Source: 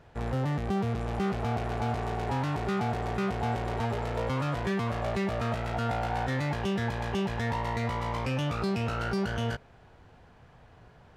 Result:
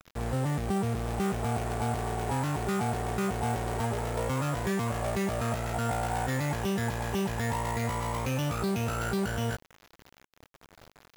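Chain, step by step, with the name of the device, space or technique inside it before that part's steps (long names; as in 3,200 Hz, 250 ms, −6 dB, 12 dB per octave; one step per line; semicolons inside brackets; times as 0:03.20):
early 8-bit sampler (sample-rate reduction 8,800 Hz, jitter 0%; bit reduction 8 bits)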